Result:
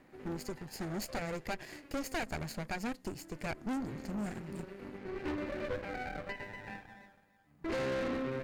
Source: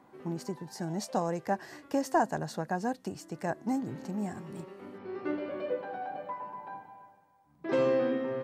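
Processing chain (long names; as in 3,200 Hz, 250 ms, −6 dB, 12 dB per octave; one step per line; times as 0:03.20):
lower of the sound and its delayed copy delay 0.42 ms
tube saturation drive 37 dB, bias 0.75
level +4.5 dB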